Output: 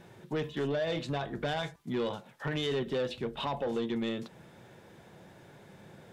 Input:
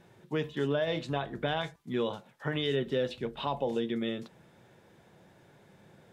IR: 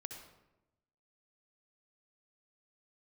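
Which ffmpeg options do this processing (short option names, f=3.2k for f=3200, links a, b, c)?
-filter_complex "[0:a]asplit=2[a][b];[b]acompressor=threshold=-42dB:ratio=6,volume=-2dB[c];[a][c]amix=inputs=2:normalize=0,asoftclip=type=tanh:threshold=-25.5dB"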